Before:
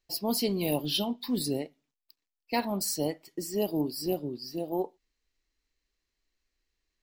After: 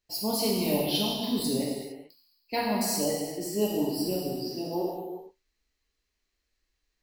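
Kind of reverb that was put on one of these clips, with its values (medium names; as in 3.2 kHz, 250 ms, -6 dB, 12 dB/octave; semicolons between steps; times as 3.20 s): gated-style reverb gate 480 ms falling, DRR -4.5 dB; trim -3 dB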